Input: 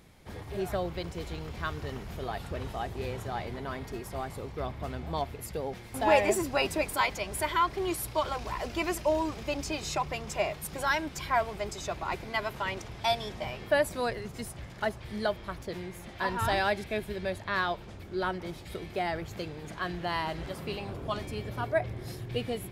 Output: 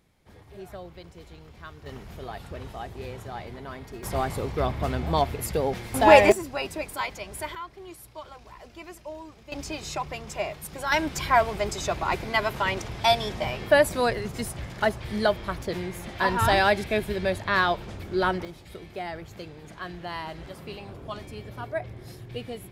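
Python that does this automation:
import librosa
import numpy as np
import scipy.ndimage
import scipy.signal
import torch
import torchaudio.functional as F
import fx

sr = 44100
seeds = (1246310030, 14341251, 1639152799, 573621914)

y = fx.gain(x, sr, db=fx.steps((0.0, -9.0), (1.86, -2.0), (4.03, 9.0), (6.32, -3.0), (7.55, -12.0), (9.52, -0.5), (10.92, 7.0), (18.45, -3.0)))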